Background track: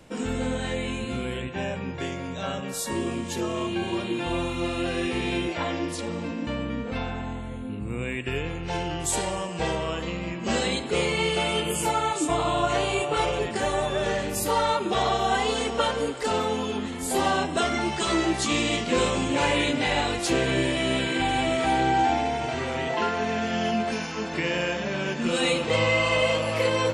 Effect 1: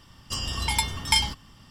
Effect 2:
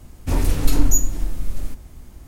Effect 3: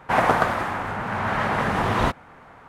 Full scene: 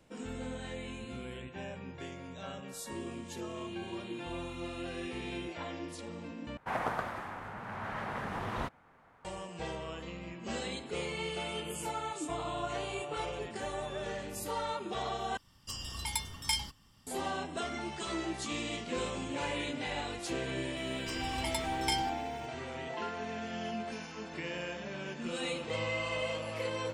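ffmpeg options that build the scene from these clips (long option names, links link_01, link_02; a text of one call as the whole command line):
ffmpeg -i bed.wav -i cue0.wav -i cue1.wav -i cue2.wav -filter_complex "[1:a]asplit=2[link_01][link_02];[0:a]volume=-12.5dB[link_03];[link_01]highshelf=frequency=6200:gain=7[link_04];[link_02]acrusher=bits=8:mix=0:aa=0.000001[link_05];[link_03]asplit=3[link_06][link_07][link_08];[link_06]atrim=end=6.574[link_09];[3:a]atrim=end=2.68,asetpts=PTS-STARTPTS,volume=-15dB[link_10];[link_07]atrim=start=9.246:end=15.374[link_11];[link_04]atrim=end=1.7,asetpts=PTS-STARTPTS,volume=-12.5dB[link_12];[link_08]atrim=start=17.066[link_13];[link_05]atrim=end=1.7,asetpts=PTS-STARTPTS,volume=-12dB,afade=type=in:duration=0.004:curve=hsin,afade=type=out:start_time=1.696:duration=0.004:curve=hsin,adelay=20760[link_14];[link_09][link_10]acrossfade=duration=0.004:curve1=hsin:curve2=hsin[link_15];[link_15][link_11]acrossfade=duration=0.004:curve1=hsin:curve2=hsin[link_16];[link_16][link_12]acrossfade=duration=0.004:curve1=hsin:curve2=hsin[link_17];[link_17][link_13]acrossfade=duration=0.004:curve1=hsin:curve2=hsin[link_18];[link_18][link_14]amix=inputs=2:normalize=0" out.wav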